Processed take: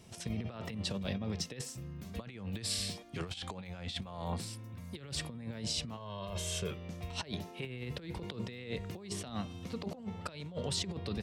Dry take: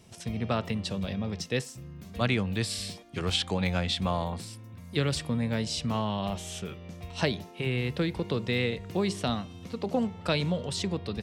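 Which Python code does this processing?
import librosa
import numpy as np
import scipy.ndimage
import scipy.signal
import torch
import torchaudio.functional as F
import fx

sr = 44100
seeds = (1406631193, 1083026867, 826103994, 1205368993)

y = fx.comb(x, sr, ms=1.9, depth=0.85, at=(5.97, 6.71))
y = fx.over_compress(y, sr, threshold_db=-33.0, ratio=-0.5)
y = y * librosa.db_to_amplitude(-5.0)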